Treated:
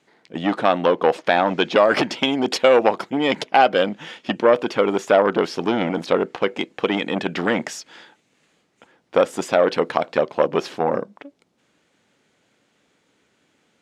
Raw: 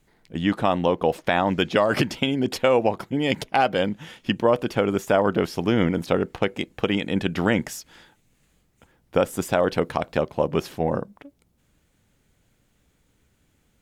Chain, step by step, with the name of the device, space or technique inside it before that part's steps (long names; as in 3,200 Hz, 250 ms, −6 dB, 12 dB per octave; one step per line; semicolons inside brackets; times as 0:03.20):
public-address speaker with an overloaded transformer (saturating transformer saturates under 650 Hz; band-pass filter 280–5,900 Hz)
0:02.22–0:03.11: high-shelf EQ 4,900 Hz +5.5 dB
level +6.5 dB